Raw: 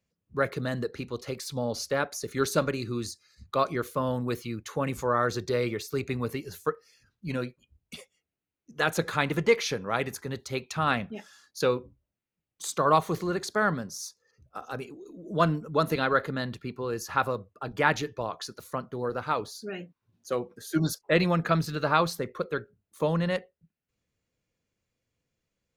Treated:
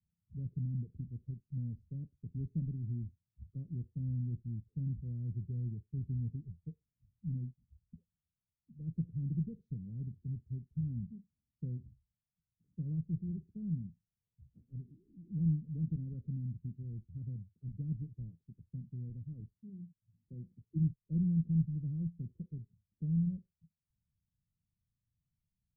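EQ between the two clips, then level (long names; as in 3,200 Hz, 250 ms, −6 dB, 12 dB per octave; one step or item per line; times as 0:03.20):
inverse Chebyshev low-pass filter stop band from 790 Hz, stop band 70 dB
0.0 dB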